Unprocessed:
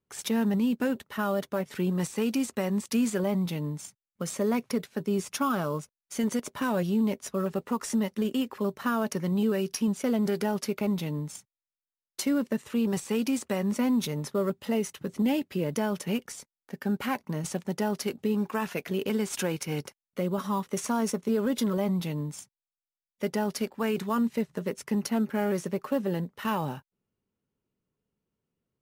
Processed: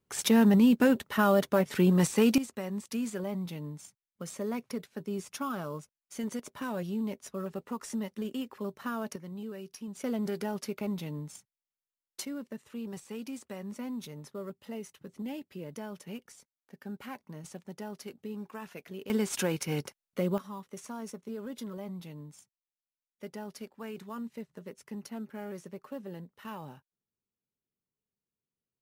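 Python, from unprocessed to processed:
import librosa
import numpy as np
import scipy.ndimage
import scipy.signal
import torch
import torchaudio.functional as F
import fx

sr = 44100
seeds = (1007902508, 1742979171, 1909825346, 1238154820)

y = fx.gain(x, sr, db=fx.steps((0.0, 4.5), (2.38, -7.5), (9.16, -14.5), (9.95, -6.0), (12.25, -12.5), (19.1, -0.5), (20.38, -13.0)))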